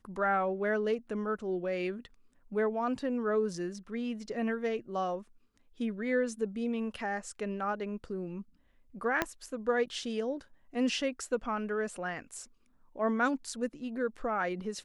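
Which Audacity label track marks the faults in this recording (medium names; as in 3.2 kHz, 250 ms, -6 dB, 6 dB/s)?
9.220000	9.220000	pop -13 dBFS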